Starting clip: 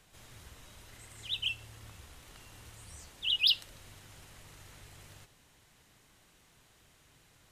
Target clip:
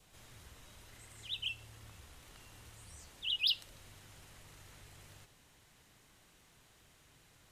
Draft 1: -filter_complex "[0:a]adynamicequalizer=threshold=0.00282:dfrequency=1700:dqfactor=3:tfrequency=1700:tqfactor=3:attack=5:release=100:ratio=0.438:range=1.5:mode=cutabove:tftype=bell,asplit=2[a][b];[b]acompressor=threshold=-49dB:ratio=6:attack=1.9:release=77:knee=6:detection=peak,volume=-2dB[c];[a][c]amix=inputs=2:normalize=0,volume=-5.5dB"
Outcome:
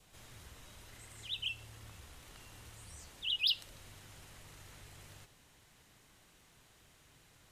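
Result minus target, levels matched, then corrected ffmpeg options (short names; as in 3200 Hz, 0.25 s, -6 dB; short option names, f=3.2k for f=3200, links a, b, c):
compressor: peak gain reduction -7.5 dB
-filter_complex "[0:a]adynamicequalizer=threshold=0.00282:dfrequency=1700:dqfactor=3:tfrequency=1700:tqfactor=3:attack=5:release=100:ratio=0.438:range=1.5:mode=cutabove:tftype=bell,asplit=2[a][b];[b]acompressor=threshold=-58dB:ratio=6:attack=1.9:release=77:knee=6:detection=peak,volume=-2dB[c];[a][c]amix=inputs=2:normalize=0,volume=-5.5dB"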